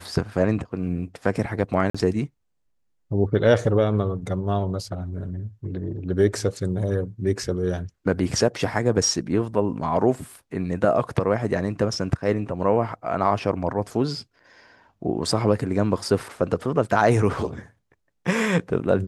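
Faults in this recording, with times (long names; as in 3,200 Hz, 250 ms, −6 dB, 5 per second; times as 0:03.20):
0:01.90–0:01.95: drop-out 45 ms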